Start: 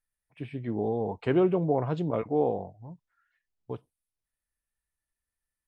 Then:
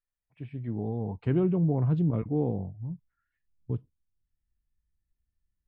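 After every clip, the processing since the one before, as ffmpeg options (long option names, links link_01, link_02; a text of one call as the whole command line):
ffmpeg -i in.wav -af "asubboost=boost=11.5:cutoff=220,lowpass=frequency=2600:poles=1,volume=-6dB" out.wav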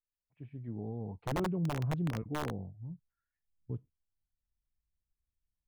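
ffmpeg -i in.wav -af "aeval=exprs='(mod(7.94*val(0)+1,2)-1)/7.94':channel_layout=same,highshelf=frequency=2000:gain=-8.5,volume=-7.5dB" out.wav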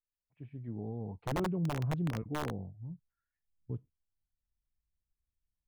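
ffmpeg -i in.wav -af anull out.wav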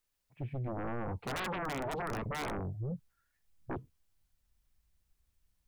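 ffmpeg -i in.wav -af "aeval=exprs='0.0531*sin(PI/2*6.31*val(0)/0.0531)':channel_layout=same,volume=-8dB" out.wav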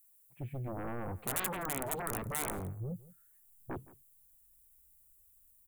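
ffmpeg -i in.wav -af "aexciter=amount=12:drive=3.6:freq=7500,aecho=1:1:168:0.106,volume=-2dB" out.wav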